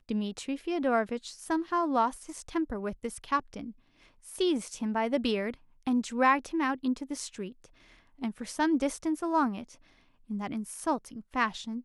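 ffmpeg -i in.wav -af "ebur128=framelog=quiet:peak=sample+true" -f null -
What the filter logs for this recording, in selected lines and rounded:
Integrated loudness:
  I:         -30.9 LUFS
  Threshold: -41.6 LUFS
Loudness range:
  LRA:         3.0 LU
  Threshold: -51.5 LUFS
  LRA low:   -32.8 LUFS
  LRA high:  -29.8 LUFS
Sample peak:
  Peak:      -11.1 dBFS
True peak:
  Peak:      -11.0 dBFS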